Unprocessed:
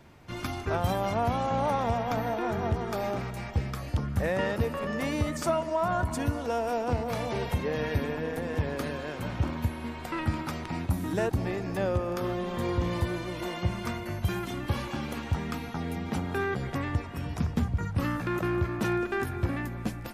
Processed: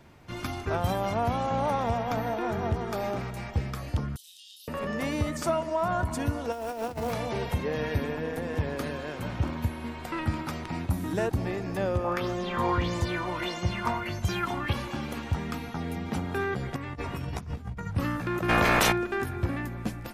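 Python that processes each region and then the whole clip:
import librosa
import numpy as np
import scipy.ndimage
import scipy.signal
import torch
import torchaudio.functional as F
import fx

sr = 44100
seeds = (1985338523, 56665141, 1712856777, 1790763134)

y = fx.chain(x, sr, fx.cheby_ripple_highpass(hz=3000.0, ripple_db=3),
    fx.doubler(ms=29.0, db=-3.5), at=(4.16, 4.68))
y = fx.chain(y, sr, fx.hum_notches(base_hz=50, count=5),
    fx.over_compress(threshold_db=-32.0, ratio=-0.5),
    fx.quant_float(bits=2), at=(6.52, 7.13))
y = fx.chain(y, sr, fx.high_shelf(hz=5300.0, db=-4.0),
    fx.bell_lfo(hz=1.6, low_hz=840.0, high_hz=7200.0, db=15), at=(12.04, 14.73))
y = fx.chain(y, sr, fx.over_compress(threshold_db=-37.0, ratio=-1.0),
    fx.doubler(ms=15.0, db=-7.5), at=(16.76, 17.87))
y = fx.spec_clip(y, sr, under_db=25, at=(18.48, 18.91), fade=0.02)
y = fx.notch(y, sr, hz=4600.0, q=25.0, at=(18.48, 18.91), fade=0.02)
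y = fx.env_flatten(y, sr, amount_pct=100, at=(18.48, 18.91), fade=0.02)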